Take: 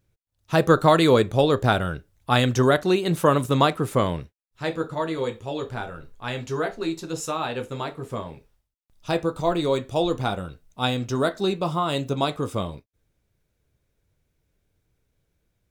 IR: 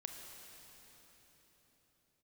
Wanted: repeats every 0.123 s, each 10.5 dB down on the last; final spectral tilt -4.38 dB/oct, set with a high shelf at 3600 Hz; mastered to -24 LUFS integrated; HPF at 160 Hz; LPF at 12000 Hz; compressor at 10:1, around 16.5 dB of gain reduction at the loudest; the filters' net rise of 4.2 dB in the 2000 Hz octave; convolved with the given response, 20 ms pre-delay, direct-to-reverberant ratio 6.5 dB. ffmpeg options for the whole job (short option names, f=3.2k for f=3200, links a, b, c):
-filter_complex "[0:a]highpass=160,lowpass=12k,equalizer=f=2k:t=o:g=5,highshelf=f=3.6k:g=3,acompressor=threshold=-28dB:ratio=10,aecho=1:1:123|246|369:0.299|0.0896|0.0269,asplit=2[a][b];[1:a]atrim=start_sample=2205,adelay=20[c];[b][c]afir=irnorm=-1:irlink=0,volume=-4dB[d];[a][d]amix=inputs=2:normalize=0,volume=8.5dB"